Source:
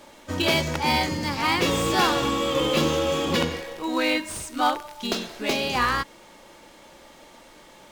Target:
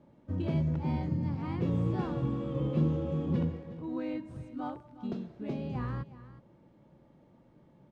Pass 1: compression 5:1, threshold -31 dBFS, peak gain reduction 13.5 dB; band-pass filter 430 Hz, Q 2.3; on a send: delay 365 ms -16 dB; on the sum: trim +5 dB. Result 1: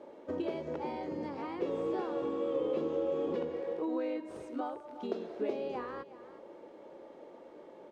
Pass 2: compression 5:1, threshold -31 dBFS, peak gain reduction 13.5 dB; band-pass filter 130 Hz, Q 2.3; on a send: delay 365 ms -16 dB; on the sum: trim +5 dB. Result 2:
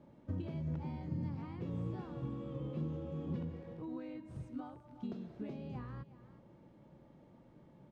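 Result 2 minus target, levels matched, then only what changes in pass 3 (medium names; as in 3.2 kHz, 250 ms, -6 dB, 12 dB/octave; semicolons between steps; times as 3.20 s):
compression: peak gain reduction +13.5 dB
remove: compression 5:1, threshold -31 dBFS, peak gain reduction 13.5 dB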